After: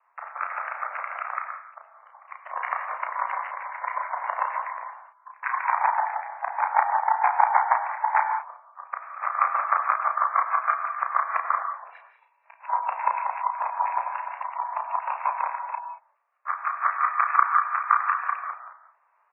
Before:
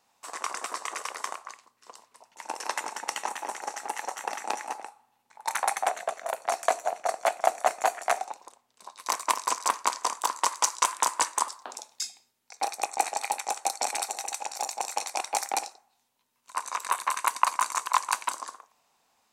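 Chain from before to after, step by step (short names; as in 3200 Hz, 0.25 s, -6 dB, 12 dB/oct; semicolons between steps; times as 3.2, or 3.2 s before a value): local time reversal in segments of 0.175 s; mistuned SSB +170 Hz 380–2000 Hz; doubler 33 ms -5 dB; on a send at -5 dB: reverb, pre-delay 3 ms; on the sum: spectral gate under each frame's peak -30 dB strong; gain +3 dB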